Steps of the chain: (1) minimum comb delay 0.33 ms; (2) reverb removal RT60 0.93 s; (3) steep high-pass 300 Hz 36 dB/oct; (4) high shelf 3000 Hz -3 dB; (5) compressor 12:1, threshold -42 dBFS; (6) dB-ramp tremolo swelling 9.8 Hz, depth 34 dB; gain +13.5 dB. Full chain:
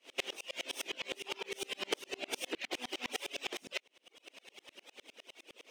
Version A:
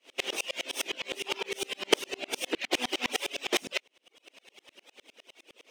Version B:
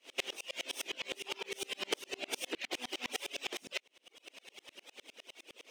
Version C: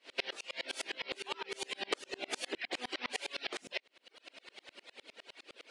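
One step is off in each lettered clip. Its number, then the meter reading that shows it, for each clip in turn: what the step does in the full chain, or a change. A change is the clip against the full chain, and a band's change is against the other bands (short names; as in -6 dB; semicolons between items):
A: 5, mean gain reduction 5.0 dB; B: 4, 8 kHz band +2.0 dB; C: 1, 1 kHz band +2.5 dB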